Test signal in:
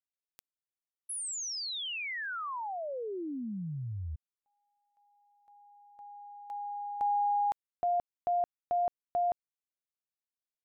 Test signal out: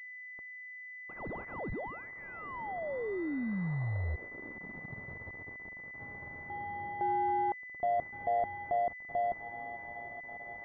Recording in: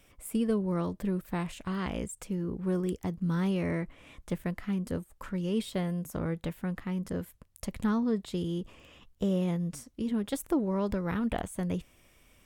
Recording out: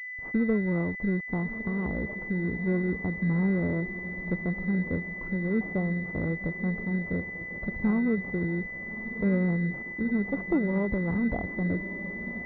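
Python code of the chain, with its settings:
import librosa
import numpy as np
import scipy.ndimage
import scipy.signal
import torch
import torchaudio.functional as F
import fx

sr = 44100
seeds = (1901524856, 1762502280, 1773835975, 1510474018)

y = fx.low_shelf(x, sr, hz=370.0, db=4.0)
y = fx.echo_diffused(y, sr, ms=1237, feedback_pct=61, wet_db=-12.5)
y = np.where(np.abs(y) >= 10.0 ** (-43.0 / 20.0), y, 0.0)
y = fx.pwm(y, sr, carrier_hz=2000.0)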